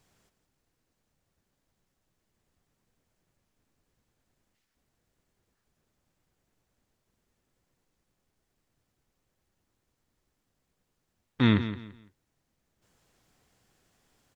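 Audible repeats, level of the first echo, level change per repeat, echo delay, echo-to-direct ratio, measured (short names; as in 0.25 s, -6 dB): 3, -12.0 dB, -11.5 dB, 0.169 s, -11.5 dB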